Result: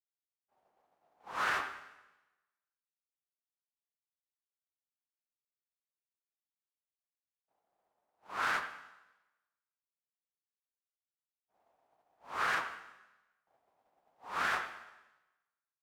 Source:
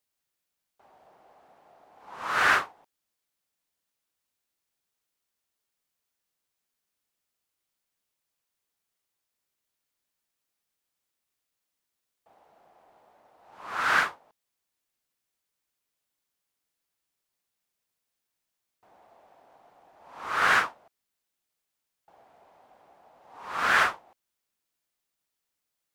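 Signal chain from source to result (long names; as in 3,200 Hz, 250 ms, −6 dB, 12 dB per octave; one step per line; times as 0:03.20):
in parallel at −4 dB: soft clipping −24.5 dBFS, distortion −8 dB
on the sum: downward expander −43 dBFS
on a send: bucket-brigade delay 181 ms, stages 4,096, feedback 35%, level −18.5 dB
on the sum: dense smooth reverb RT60 1.8 s, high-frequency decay 0.95×, DRR 14.5 dB
brickwall limiter −18 dBFS, peak gain reduction 9 dB
phase-vocoder stretch with locked phases 0.61×
level −4.5 dB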